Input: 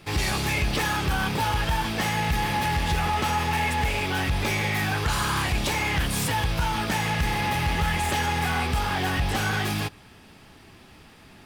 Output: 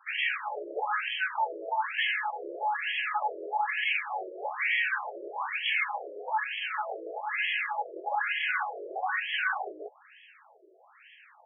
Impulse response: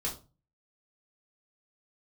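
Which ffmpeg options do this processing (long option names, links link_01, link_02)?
-af "highshelf=frequency=3400:gain=10.5,afftfilt=real='re*between(b*sr/1024,450*pow(2400/450,0.5+0.5*sin(2*PI*1.1*pts/sr))/1.41,450*pow(2400/450,0.5+0.5*sin(2*PI*1.1*pts/sr))*1.41)':imag='im*between(b*sr/1024,450*pow(2400/450,0.5+0.5*sin(2*PI*1.1*pts/sr))/1.41,450*pow(2400/450,0.5+0.5*sin(2*PI*1.1*pts/sr))*1.41)':win_size=1024:overlap=0.75"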